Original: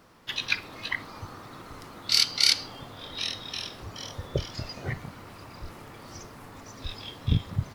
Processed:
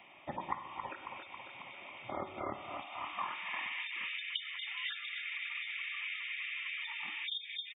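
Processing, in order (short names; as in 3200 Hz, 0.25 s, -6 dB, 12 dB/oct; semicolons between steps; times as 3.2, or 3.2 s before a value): bell 130 Hz +15 dB 1.5 oct; feedback echo 0.273 s, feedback 54%, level -12 dB; Schroeder reverb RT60 1 s, combs from 32 ms, DRR 9 dB; inverted band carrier 3500 Hz; compressor 1.5:1, threshold -36 dBFS, peak gain reduction 11 dB; band-pass sweep 480 Hz -> 1900 Hz, 2.52–3.58; dynamic EQ 680 Hz, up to -4 dB, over -54 dBFS, Q 1.4; spectral gate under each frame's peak -30 dB strong; fixed phaser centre 2300 Hz, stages 8; three-band squash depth 40%; gain +13.5 dB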